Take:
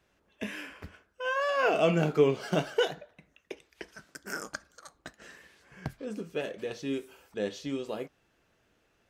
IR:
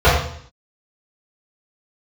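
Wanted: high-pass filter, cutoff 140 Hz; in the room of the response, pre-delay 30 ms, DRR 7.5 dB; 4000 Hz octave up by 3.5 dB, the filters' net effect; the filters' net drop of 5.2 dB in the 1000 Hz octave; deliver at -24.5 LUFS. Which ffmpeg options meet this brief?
-filter_complex "[0:a]highpass=140,equalizer=f=1k:t=o:g=-7.5,equalizer=f=4k:t=o:g=6,asplit=2[a][b];[1:a]atrim=start_sample=2205,adelay=30[c];[b][c]afir=irnorm=-1:irlink=0,volume=-35dB[d];[a][d]amix=inputs=2:normalize=0,volume=6.5dB"

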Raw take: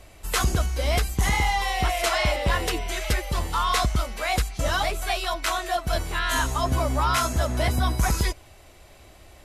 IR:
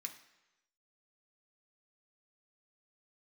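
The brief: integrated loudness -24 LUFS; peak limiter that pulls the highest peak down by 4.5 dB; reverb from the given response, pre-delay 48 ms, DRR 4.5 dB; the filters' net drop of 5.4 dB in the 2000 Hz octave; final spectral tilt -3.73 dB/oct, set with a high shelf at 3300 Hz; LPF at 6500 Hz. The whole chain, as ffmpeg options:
-filter_complex "[0:a]lowpass=6.5k,equalizer=f=2k:t=o:g=-8,highshelf=f=3.3k:g=4,alimiter=limit=-17.5dB:level=0:latency=1,asplit=2[a][b];[1:a]atrim=start_sample=2205,adelay=48[c];[b][c]afir=irnorm=-1:irlink=0,volume=-1dB[d];[a][d]amix=inputs=2:normalize=0,volume=3dB"

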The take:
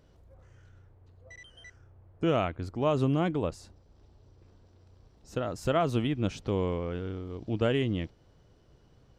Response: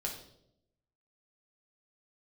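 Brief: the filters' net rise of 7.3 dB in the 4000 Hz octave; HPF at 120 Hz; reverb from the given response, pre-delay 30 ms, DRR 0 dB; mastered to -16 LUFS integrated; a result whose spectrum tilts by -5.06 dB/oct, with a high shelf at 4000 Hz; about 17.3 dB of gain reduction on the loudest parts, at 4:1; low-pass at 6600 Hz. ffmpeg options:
-filter_complex "[0:a]highpass=120,lowpass=6.6k,highshelf=f=4k:g=8,equalizer=f=4k:t=o:g=6.5,acompressor=threshold=-43dB:ratio=4,asplit=2[a][b];[1:a]atrim=start_sample=2205,adelay=30[c];[b][c]afir=irnorm=-1:irlink=0,volume=-1.5dB[d];[a][d]amix=inputs=2:normalize=0,volume=26dB"

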